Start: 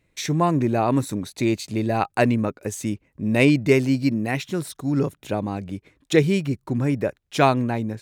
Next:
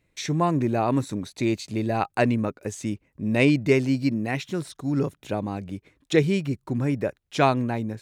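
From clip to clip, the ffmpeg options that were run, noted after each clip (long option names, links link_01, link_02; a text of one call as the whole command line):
ffmpeg -i in.wav -filter_complex "[0:a]acrossover=split=8800[link_01][link_02];[link_02]acompressor=threshold=-55dB:ratio=4:attack=1:release=60[link_03];[link_01][link_03]amix=inputs=2:normalize=0,volume=-2.5dB" out.wav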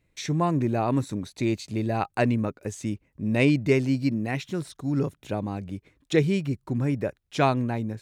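ffmpeg -i in.wav -af "lowshelf=frequency=140:gain=5,volume=-2.5dB" out.wav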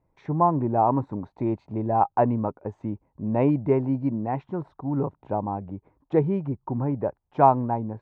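ffmpeg -i in.wav -af "lowpass=frequency=900:width_type=q:width=4.6,volume=-1.5dB" out.wav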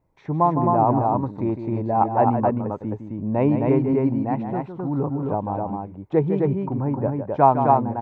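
ffmpeg -i in.wav -af "aecho=1:1:157.4|262.4:0.355|0.708,volume=1.5dB" out.wav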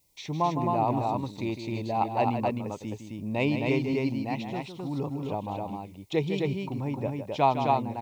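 ffmpeg -i in.wav -af "aexciter=amount=11.6:drive=9.4:freq=2500,volume=-7.5dB" out.wav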